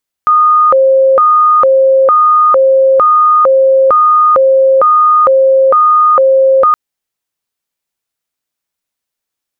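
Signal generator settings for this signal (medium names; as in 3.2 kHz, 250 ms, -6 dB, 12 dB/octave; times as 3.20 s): siren hi-lo 533–1230 Hz 1.1 per s sine -4 dBFS 6.47 s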